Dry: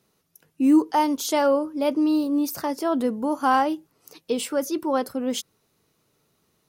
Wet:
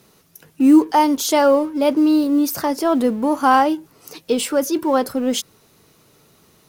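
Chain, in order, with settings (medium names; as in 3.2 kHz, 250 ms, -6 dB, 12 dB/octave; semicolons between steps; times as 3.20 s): companding laws mixed up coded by mu; trim +5.5 dB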